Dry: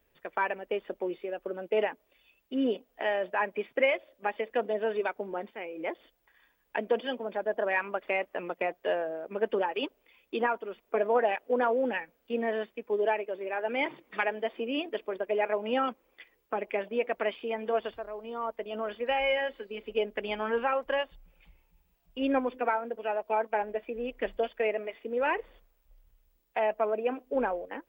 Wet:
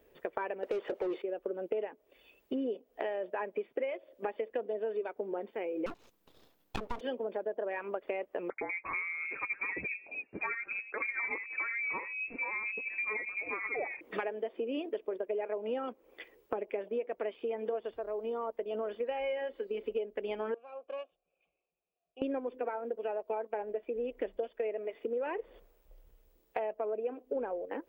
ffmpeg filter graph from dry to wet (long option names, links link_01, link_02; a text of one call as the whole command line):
ffmpeg -i in.wav -filter_complex "[0:a]asettb=1/sr,asplit=3[link_01][link_02][link_03];[link_01]atrim=end=0.634[link_04];[link_02]atrim=start=0.63:end=1.22,asetpts=PTS-STARTPTS,afade=type=in:duration=0.004:curve=qsin,afade=type=out:start_time=0.586:duration=0.004:curve=qsin,equalizer=frequency=100:width_type=o:width=1.2:gain=-13.5,asplit=2[link_05][link_06];[link_06]highpass=frequency=720:poles=1,volume=28dB,asoftclip=type=tanh:threshold=-20.5dB[link_07];[link_05][link_07]amix=inputs=2:normalize=0,lowpass=frequency=2400:poles=1,volume=-6dB[link_08];[link_03]atrim=start=1.216[link_09];[link_04][link_08]acrossfade=duration=0.004:curve1=hsin:curve2=qsin[link_10];[link_10][link_09]acrossfade=duration=0.004:curve1=qsin:curve2=hsin,asettb=1/sr,asplit=3[link_11][link_12][link_13];[link_11]atrim=end=5.864[link_14];[link_12]atrim=start=5.86:end=7.01,asetpts=PTS-STARTPTS,afade=type=in:duration=0.004:curve=qsin,afade=type=out:start_time=1.146:duration=0.004:curve=qsin,highpass=94,aeval=exprs='abs(val(0))':channel_layout=same[link_15];[link_13]atrim=start=7.006[link_16];[link_14][link_15]acrossfade=duration=0.004:curve1=hsin:curve2=qsin[link_17];[link_17][link_16]acrossfade=duration=0.004:curve1=qsin:curve2=hsin,asettb=1/sr,asplit=3[link_18][link_19][link_20];[link_18]atrim=end=8.504[link_21];[link_19]atrim=start=8.5:end=14.01,asetpts=PTS-STARTPTS,afade=type=in:duration=0.004:curve=qsin,afade=type=out:start_time=5.506:duration=0.004:curve=qsin,acrossover=split=290|1000[link_22][link_23][link_24];[link_23]adelay=80[link_25];[link_22]adelay=350[link_26];[link_26][link_25][link_24]amix=inputs=3:normalize=0,atrim=end_sample=242991,lowpass=frequency=2400:width_type=q:width=0.5098,lowpass=frequency=2400:width_type=q:width=0.6013,lowpass=frequency=2400:width_type=q:width=0.9,lowpass=frequency=2400:width_type=q:width=2.563,afreqshift=-2800[link_27];[link_20]atrim=start=14.006[link_28];[link_21][link_27]acrossfade=duration=0.004:curve1=hsin:curve2=qsin[link_29];[link_29][link_28]acrossfade=duration=0.004:curve1=qsin:curve2=hsin,asettb=1/sr,asplit=3[link_30][link_31][link_32];[link_30]atrim=end=20.544[link_33];[link_31]atrim=start=20.54:end=22.22,asetpts=PTS-STARTPTS,afade=type=in:duration=0.004:curve=qsin,afade=type=out:start_time=1.676:duration=0.004:curve=qsin,equalizer=frequency=900:width=1.2:gain=-11.5,aeval=exprs='(tanh(22.4*val(0)+0.65)-tanh(0.65))/22.4':channel_layout=same,asplit=3[link_34][link_35][link_36];[link_34]bandpass=frequency=730:width_type=q:width=8,volume=0dB[link_37];[link_35]bandpass=frequency=1090:width_type=q:width=8,volume=-6dB[link_38];[link_36]bandpass=frequency=2440:width_type=q:width=8,volume=-9dB[link_39];[link_37][link_38][link_39]amix=inputs=3:normalize=0[link_40];[link_32]atrim=start=22.216[link_41];[link_33][link_40]acrossfade=duration=0.004:curve1=hsin:curve2=qsin[link_42];[link_42][link_41]acrossfade=duration=0.004:curve1=qsin:curve2=hsin,equalizer=frequency=420:width=0.9:gain=11.5,acompressor=threshold=-35dB:ratio=6,volume=1.5dB" out.wav